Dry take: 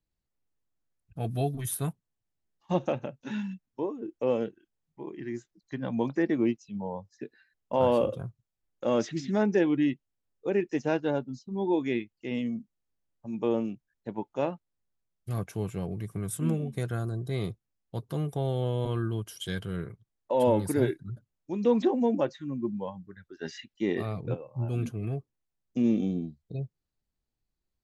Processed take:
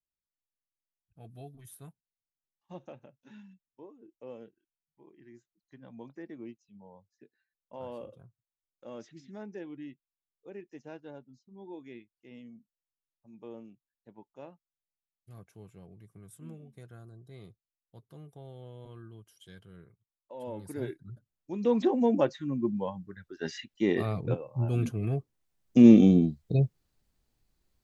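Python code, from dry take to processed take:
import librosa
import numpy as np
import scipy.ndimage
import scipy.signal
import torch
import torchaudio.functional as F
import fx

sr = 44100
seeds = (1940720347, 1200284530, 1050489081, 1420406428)

y = fx.gain(x, sr, db=fx.line((20.41, -18.0), (20.91, -8.5), (22.23, 2.0), (25.08, 2.0), (25.86, 10.0)))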